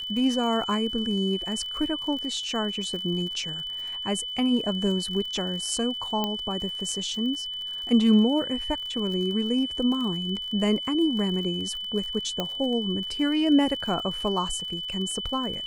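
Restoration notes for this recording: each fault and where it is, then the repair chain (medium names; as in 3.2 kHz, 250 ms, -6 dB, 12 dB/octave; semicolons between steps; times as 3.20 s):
crackle 47 per s -34 dBFS
whine 3 kHz -31 dBFS
6.24 s: pop -13 dBFS
12.40 s: pop -13 dBFS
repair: de-click; band-stop 3 kHz, Q 30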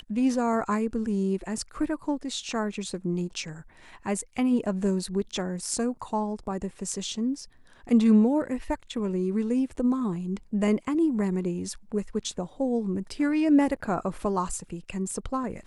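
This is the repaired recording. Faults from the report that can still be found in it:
nothing left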